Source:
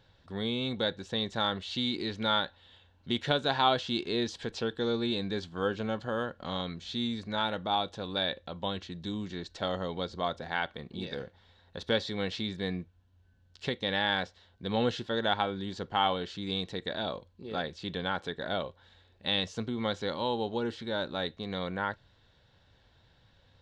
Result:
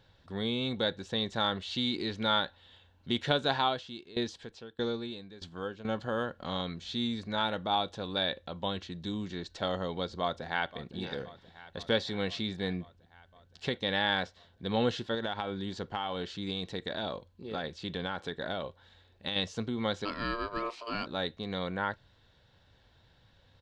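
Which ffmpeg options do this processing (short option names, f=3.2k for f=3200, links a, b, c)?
-filter_complex "[0:a]asettb=1/sr,asplit=3[a][b][c];[a]atrim=end=3.544[d];[b]atrim=start=3.54:end=5.85,asetpts=PTS-STARTPTS,afade=t=in:d=0.004:c=qsin,afade=t=out:st=2.306:d=0.004:c=qsin,aeval=exprs='val(0)*pow(10,-19*if(lt(mod(1.6*n/s,1),2*abs(1.6)/1000),1-mod(1.6*n/s,1)/(2*abs(1.6)/1000),(mod(1.6*n/s,1)-2*abs(1.6)/1000)/(1-2*abs(1.6)/1000))/20)':c=same[e];[c]atrim=start=5.846[f];[d][e]acrossfade=d=0.004:c1=hsin:c2=qsin[g];[g][f]acrossfade=d=0.004:c1=qsin:c2=hsin,asplit=2[h][i];[i]afade=t=in:st=10.2:d=0.01,afade=t=out:st=10.97:d=0.01,aecho=0:1:520|1040|1560|2080|2600|3120|3640|4160|4680|5200:0.141254|0.10594|0.0794552|0.0595914|0.0446936|0.0335202|0.0251401|0.0188551|0.0141413|0.010606[j];[h][j]amix=inputs=2:normalize=0,asettb=1/sr,asplit=3[k][l][m];[k]atrim=end=15.144[n];[l]atrim=start=15.14:end=19.36,asetpts=PTS-STARTPTS,afade=t=in:d=0.004:c=qsin,afade=t=out:st=4.216:d=0.004:c=qsin,acompressor=threshold=-29dB:ratio=10:attack=3.2:release=140:knee=1:detection=peak[o];[m]atrim=start=19.356[p];[n][o]acrossfade=d=0.004:c1=hsin:c2=qsin[q];[q][p]acrossfade=d=0.004:c1=qsin:c2=hsin,asplit=3[r][s][t];[r]afade=t=out:st=20.04:d=0.02[u];[s]aeval=exprs='val(0)*sin(2*PI*810*n/s)':c=same,afade=t=in:st=20.04:d=0.02,afade=t=out:st=21.05:d=0.02[v];[t]afade=t=in:st=21.05:d=0.02[w];[u][v][w]amix=inputs=3:normalize=0"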